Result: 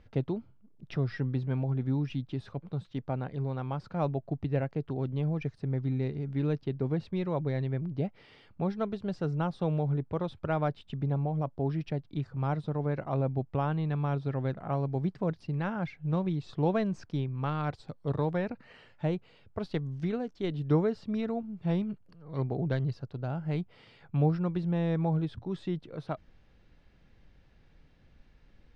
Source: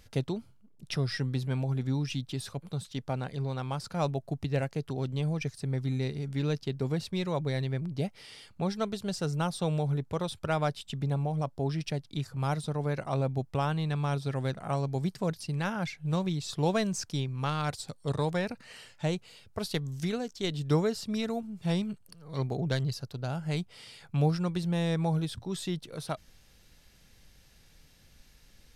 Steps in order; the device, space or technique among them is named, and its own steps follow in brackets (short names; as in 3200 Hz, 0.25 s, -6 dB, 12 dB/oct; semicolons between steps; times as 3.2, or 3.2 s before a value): phone in a pocket (LPF 3200 Hz 12 dB/oct; bell 310 Hz +3 dB 0.43 oct; high shelf 2300 Hz -10 dB)